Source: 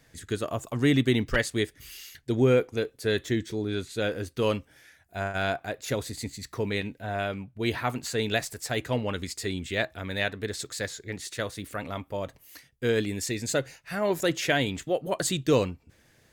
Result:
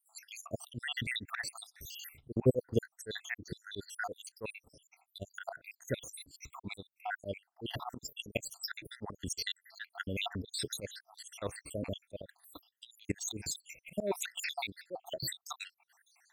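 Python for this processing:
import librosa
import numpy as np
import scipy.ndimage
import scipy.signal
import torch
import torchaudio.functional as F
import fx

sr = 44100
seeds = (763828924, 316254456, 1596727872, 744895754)

y = fx.spec_dropout(x, sr, seeds[0], share_pct=80)
y = fx.level_steps(y, sr, step_db=11)
y = fx.auto_swell(y, sr, attack_ms=170.0)
y = y * librosa.db_to_amplitude(8.0)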